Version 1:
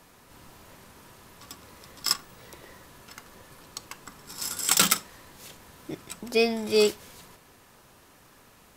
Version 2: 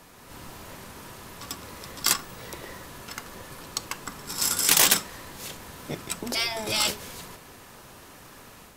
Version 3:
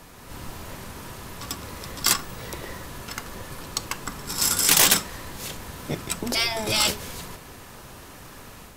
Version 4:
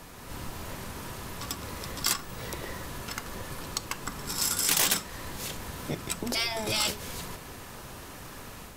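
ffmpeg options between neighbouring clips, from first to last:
-af "afftfilt=real='re*lt(hypot(re,im),0.126)':imag='im*lt(hypot(re,im),0.126)':win_size=1024:overlap=0.75,dynaudnorm=f=160:g=3:m=4dB,volume=4dB"
-filter_complex "[0:a]lowshelf=f=110:g=7.5,asplit=2[a][b];[b]asoftclip=type=hard:threshold=-18.5dB,volume=-4dB[c];[a][c]amix=inputs=2:normalize=0,volume=-1dB"
-af "acompressor=threshold=-35dB:ratio=1.5"

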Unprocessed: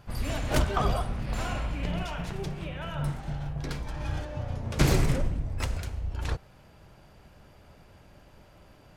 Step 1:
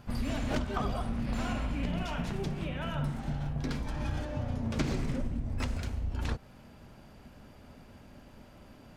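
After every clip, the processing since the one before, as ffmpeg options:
-filter_complex "[0:a]acrossover=split=7100[a][b];[b]acompressor=threshold=-54dB:ratio=4:attack=1:release=60[c];[a][c]amix=inputs=2:normalize=0,equalizer=f=240:t=o:w=0.37:g=12,acompressor=threshold=-28dB:ratio=6"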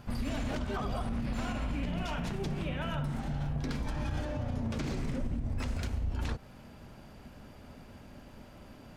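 -af "alimiter=level_in=3.5dB:limit=-24dB:level=0:latency=1:release=62,volume=-3.5dB,volume=2dB"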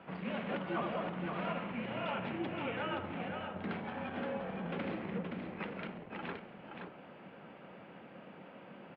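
-af "asoftclip=type=tanh:threshold=-27dB,aecho=1:1:522:0.531,highpass=f=260:t=q:w=0.5412,highpass=f=260:t=q:w=1.307,lowpass=f=3.1k:t=q:w=0.5176,lowpass=f=3.1k:t=q:w=0.7071,lowpass=f=3.1k:t=q:w=1.932,afreqshift=-54,volume=2dB"

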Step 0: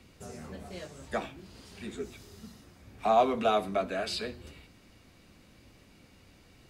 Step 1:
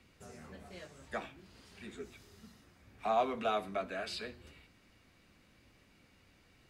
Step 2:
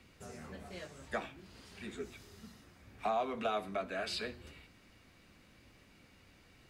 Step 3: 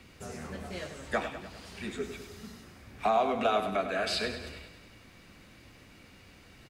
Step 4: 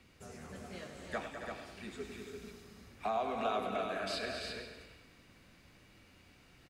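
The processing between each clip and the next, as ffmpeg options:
-af "equalizer=f=1.8k:w=0.8:g=5,volume=-8.5dB"
-af "alimiter=level_in=3.5dB:limit=-24dB:level=0:latency=1:release=402,volume=-3.5dB,volume=3dB"
-af "aecho=1:1:100|200|300|400|500|600|700:0.316|0.183|0.106|0.0617|0.0358|0.0208|0.012,volume=7dB"
-af "aecho=1:1:207|275|341|482:0.316|0.355|0.531|0.133,volume=-8.5dB"

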